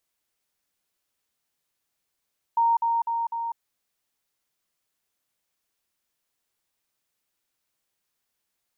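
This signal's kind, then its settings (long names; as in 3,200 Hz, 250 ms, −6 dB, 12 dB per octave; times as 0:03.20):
level staircase 927 Hz −17.5 dBFS, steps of −3 dB, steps 4, 0.20 s 0.05 s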